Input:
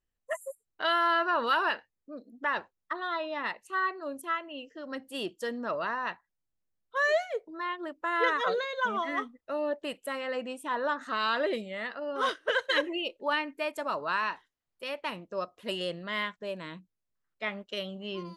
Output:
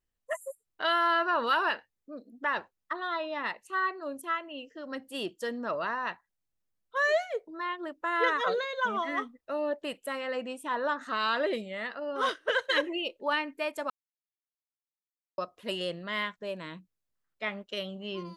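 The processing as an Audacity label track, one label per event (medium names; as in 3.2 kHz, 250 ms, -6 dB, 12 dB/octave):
13.900000	15.380000	mute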